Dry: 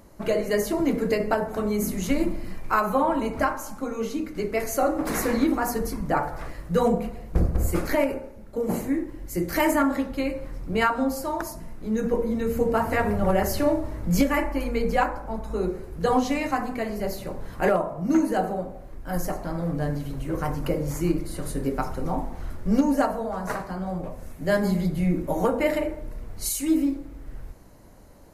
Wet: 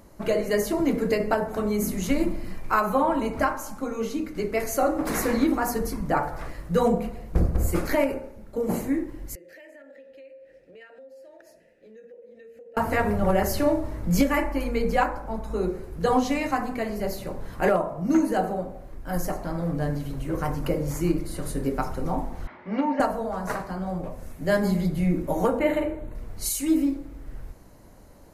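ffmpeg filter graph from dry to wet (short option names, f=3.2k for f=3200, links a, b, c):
-filter_complex "[0:a]asettb=1/sr,asplit=3[a][b][c];[a]atrim=end=9.354[d];[b]atrim=start=9.35:end=12.77,asetpts=PTS-STARTPTS,afade=t=in:d=0.004:c=qsin,afade=t=out:st=3.416:d=0.004:c=qsin,asplit=3[e][f][g];[e]bandpass=f=530:t=q:w=8,volume=0dB[h];[f]bandpass=f=1.84k:t=q:w=8,volume=-6dB[i];[g]bandpass=f=2.48k:t=q:w=8,volume=-9dB[j];[h][i][j]amix=inputs=3:normalize=0,highshelf=f=3.8k:g=10.5,acompressor=threshold=-46dB:ratio=5:attack=3.2:release=140:knee=1:detection=peak[k];[c]atrim=start=12.766[l];[d][k]acrossfade=d=0.004:c1=hsin:c2=qsin[m];[m][l]acrossfade=d=0.004:c1=qsin:c2=hsin,asettb=1/sr,asplit=3[n][o][p];[n]atrim=end=22.474[q];[o]atrim=start=22.47:end=23,asetpts=PTS-STARTPTS,afade=t=in:d=0.004:c=qsin,afade=t=out:st=0.526:d=0.004:c=qsin,highpass=330,equalizer=f=450:t=q:w=4:g=-7,equalizer=f=930:t=q:w=4:g=6,equalizer=f=2.1k:t=q:w=4:g=9,lowpass=f=3.4k:w=0.5412,lowpass=f=3.4k:w=1.3066,asplit=2[r][s];[s]adelay=41,volume=-12dB[t];[r][t]amix=inputs=2:normalize=0,atrim=end_sample=23373[u];[p]atrim=start=22.996[v];[q][u]acrossfade=d=0.004:c1=hsin:c2=qsin[w];[w][v]acrossfade=d=0.004:c1=qsin:c2=hsin,asettb=1/sr,asplit=3[x][y][z];[x]atrim=end=25.594[aa];[y]atrim=start=25.59:end=26.15,asetpts=PTS-STARTPTS,afade=t=in:d=0.004:c=qsin,afade=t=out:st=0.556:d=0.004:c=qsin,asuperstop=centerf=5200:order=8:qfactor=3.1,equalizer=f=9.3k:w=0.34:g=-7,asplit=2[ab][ac];[ac]adelay=50,volume=-8dB[ad];[ab][ad]amix=inputs=2:normalize=0,atrim=end_sample=24696[ae];[z]atrim=start=26.146[af];[aa][ae]acrossfade=d=0.004:c1=hsin:c2=qsin[ag];[ag][af]acrossfade=d=0.004:c1=qsin:c2=hsin"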